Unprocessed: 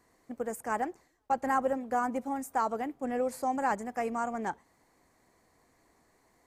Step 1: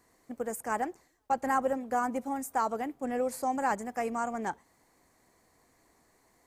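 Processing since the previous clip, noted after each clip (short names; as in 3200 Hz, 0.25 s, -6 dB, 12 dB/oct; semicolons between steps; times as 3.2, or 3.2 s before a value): high shelf 5300 Hz +5 dB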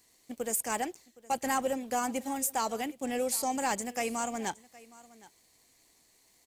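resonant high shelf 2100 Hz +11.5 dB, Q 1.5; sample leveller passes 1; echo 0.766 s -21 dB; gain -4 dB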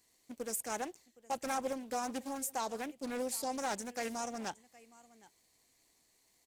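Doppler distortion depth 0.34 ms; gain -6 dB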